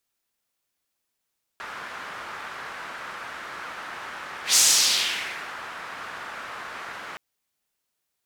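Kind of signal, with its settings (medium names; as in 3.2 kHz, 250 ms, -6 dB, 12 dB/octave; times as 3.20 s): whoosh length 5.57 s, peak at 2.96 s, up 0.13 s, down 1.05 s, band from 1.4 kHz, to 6.7 kHz, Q 1.8, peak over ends 20.5 dB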